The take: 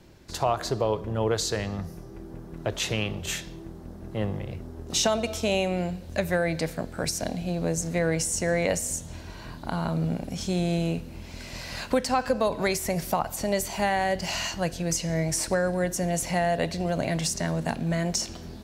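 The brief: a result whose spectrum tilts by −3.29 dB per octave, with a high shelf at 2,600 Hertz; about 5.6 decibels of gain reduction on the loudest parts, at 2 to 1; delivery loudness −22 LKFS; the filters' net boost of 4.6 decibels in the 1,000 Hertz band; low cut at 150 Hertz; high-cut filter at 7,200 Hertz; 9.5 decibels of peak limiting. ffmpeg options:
ffmpeg -i in.wav -af "highpass=150,lowpass=7200,equalizer=frequency=1000:width_type=o:gain=5.5,highshelf=frequency=2600:gain=7.5,acompressor=threshold=-26dB:ratio=2,volume=9dB,alimiter=limit=-11dB:level=0:latency=1" out.wav

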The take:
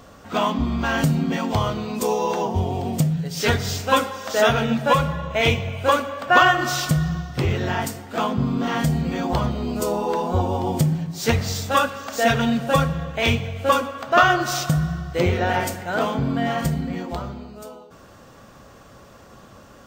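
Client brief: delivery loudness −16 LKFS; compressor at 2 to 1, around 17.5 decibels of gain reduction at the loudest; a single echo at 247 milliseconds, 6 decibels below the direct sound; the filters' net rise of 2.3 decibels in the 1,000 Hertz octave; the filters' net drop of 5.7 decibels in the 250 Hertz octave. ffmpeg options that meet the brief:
ffmpeg -i in.wav -af "equalizer=frequency=250:width_type=o:gain=-8.5,equalizer=frequency=1000:width_type=o:gain=3.5,acompressor=threshold=-42dB:ratio=2,aecho=1:1:247:0.501,volume=18dB" out.wav

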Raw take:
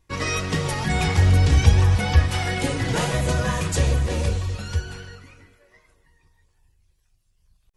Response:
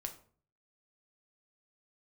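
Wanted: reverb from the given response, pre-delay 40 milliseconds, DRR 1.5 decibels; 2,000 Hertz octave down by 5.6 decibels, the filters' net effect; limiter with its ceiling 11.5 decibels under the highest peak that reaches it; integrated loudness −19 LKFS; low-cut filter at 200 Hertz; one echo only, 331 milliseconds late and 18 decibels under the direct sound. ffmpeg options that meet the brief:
-filter_complex "[0:a]highpass=200,equalizer=frequency=2000:width_type=o:gain=-7,alimiter=limit=-23.5dB:level=0:latency=1,aecho=1:1:331:0.126,asplit=2[link_01][link_02];[1:a]atrim=start_sample=2205,adelay=40[link_03];[link_02][link_03]afir=irnorm=-1:irlink=0,volume=0.5dB[link_04];[link_01][link_04]amix=inputs=2:normalize=0,volume=11.5dB"

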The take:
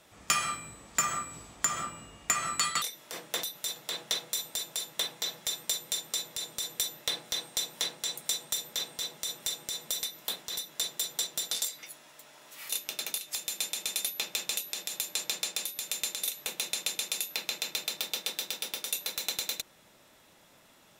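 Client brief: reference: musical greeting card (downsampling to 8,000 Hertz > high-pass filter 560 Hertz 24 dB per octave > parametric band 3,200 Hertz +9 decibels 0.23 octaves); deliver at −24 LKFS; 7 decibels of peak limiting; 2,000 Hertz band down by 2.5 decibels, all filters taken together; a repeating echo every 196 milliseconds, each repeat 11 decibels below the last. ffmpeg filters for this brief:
ffmpeg -i in.wav -af "equalizer=frequency=2000:width_type=o:gain=-4,alimiter=limit=-23dB:level=0:latency=1,aecho=1:1:196|392|588:0.282|0.0789|0.0221,aresample=8000,aresample=44100,highpass=frequency=560:width=0.5412,highpass=frequency=560:width=1.3066,equalizer=frequency=3200:width_type=o:width=0.23:gain=9,volume=14dB" out.wav

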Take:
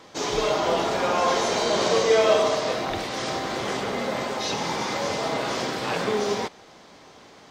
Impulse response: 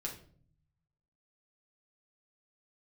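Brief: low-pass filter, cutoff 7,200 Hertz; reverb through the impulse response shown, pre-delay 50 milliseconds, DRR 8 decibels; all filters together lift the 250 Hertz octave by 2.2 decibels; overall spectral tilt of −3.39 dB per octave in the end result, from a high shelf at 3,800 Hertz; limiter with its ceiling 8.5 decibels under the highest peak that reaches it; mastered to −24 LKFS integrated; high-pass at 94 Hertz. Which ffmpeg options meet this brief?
-filter_complex "[0:a]highpass=94,lowpass=7200,equalizer=frequency=250:width_type=o:gain=3,highshelf=frequency=3800:gain=3,alimiter=limit=-14.5dB:level=0:latency=1,asplit=2[link_01][link_02];[1:a]atrim=start_sample=2205,adelay=50[link_03];[link_02][link_03]afir=irnorm=-1:irlink=0,volume=-7.5dB[link_04];[link_01][link_04]amix=inputs=2:normalize=0,volume=0.5dB"

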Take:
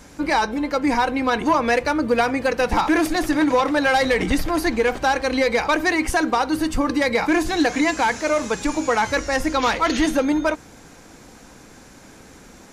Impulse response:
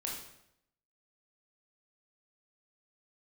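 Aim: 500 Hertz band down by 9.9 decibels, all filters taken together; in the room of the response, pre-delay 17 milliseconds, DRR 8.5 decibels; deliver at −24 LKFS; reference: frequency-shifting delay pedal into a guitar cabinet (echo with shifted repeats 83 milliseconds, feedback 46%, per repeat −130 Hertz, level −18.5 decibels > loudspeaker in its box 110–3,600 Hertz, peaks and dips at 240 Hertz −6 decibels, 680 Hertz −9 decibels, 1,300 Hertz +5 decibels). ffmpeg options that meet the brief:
-filter_complex "[0:a]equalizer=frequency=500:width_type=o:gain=-9,asplit=2[link_01][link_02];[1:a]atrim=start_sample=2205,adelay=17[link_03];[link_02][link_03]afir=irnorm=-1:irlink=0,volume=-10dB[link_04];[link_01][link_04]amix=inputs=2:normalize=0,asplit=5[link_05][link_06][link_07][link_08][link_09];[link_06]adelay=83,afreqshift=-130,volume=-18.5dB[link_10];[link_07]adelay=166,afreqshift=-260,volume=-25.2dB[link_11];[link_08]adelay=249,afreqshift=-390,volume=-32dB[link_12];[link_09]adelay=332,afreqshift=-520,volume=-38.7dB[link_13];[link_05][link_10][link_11][link_12][link_13]amix=inputs=5:normalize=0,highpass=110,equalizer=frequency=240:width_type=q:width=4:gain=-6,equalizer=frequency=680:width_type=q:width=4:gain=-9,equalizer=frequency=1300:width_type=q:width=4:gain=5,lowpass=frequency=3600:width=0.5412,lowpass=frequency=3600:width=1.3066,volume=-1.5dB"

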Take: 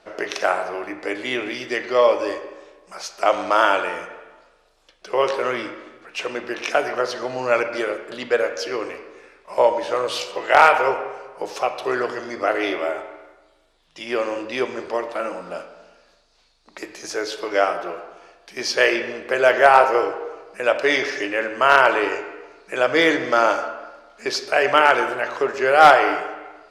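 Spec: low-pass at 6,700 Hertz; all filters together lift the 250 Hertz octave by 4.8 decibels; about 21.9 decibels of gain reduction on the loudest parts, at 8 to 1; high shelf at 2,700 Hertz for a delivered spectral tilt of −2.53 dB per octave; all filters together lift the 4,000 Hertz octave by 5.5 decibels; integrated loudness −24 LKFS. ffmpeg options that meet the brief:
ffmpeg -i in.wav -af "lowpass=6700,equalizer=frequency=250:width_type=o:gain=7,highshelf=frequency=2700:gain=3.5,equalizer=frequency=4000:width_type=o:gain=5,acompressor=threshold=-29dB:ratio=8,volume=9.5dB" out.wav

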